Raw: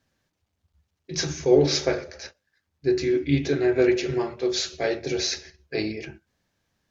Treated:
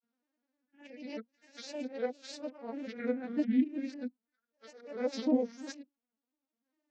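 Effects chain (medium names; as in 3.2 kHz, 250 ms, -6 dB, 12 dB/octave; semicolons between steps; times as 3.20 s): reverse the whole clip; vocoder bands 32, saw 262 Hz; granulator, spray 23 ms, pitch spread up and down by 3 st; trim -7 dB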